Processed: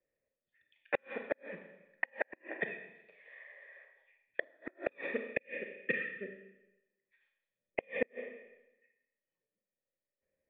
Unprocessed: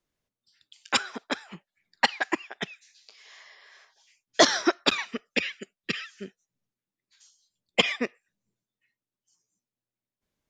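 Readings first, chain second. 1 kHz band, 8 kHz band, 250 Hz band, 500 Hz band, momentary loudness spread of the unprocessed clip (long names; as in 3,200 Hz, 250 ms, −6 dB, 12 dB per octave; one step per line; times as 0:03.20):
−18.0 dB, below −40 dB, −14.5 dB, −7.5 dB, 16 LU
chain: formant resonators in series e
four-comb reverb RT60 0.96 s, combs from 28 ms, DRR 5 dB
gate with flip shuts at −27 dBFS, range −38 dB
level +9.5 dB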